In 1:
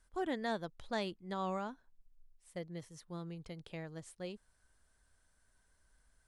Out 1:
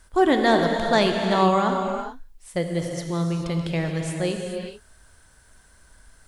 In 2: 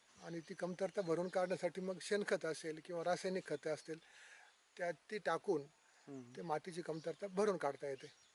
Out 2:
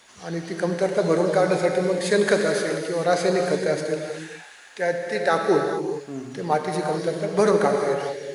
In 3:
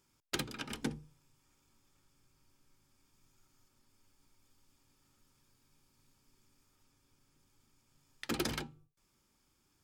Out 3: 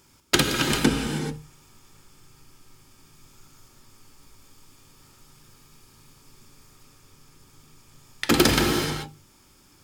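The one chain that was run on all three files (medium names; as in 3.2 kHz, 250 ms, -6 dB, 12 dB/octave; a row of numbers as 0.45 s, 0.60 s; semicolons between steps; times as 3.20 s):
gated-style reverb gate 460 ms flat, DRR 2.5 dB; normalise loudness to -23 LUFS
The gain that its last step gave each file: +17.5 dB, +17.5 dB, +16.0 dB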